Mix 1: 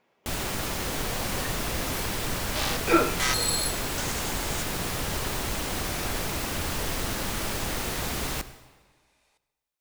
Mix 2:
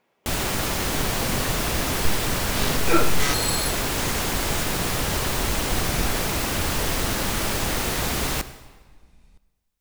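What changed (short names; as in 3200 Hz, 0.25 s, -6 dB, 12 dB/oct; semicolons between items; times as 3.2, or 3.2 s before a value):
first sound +5.5 dB; second sound: remove HPF 500 Hz 24 dB/oct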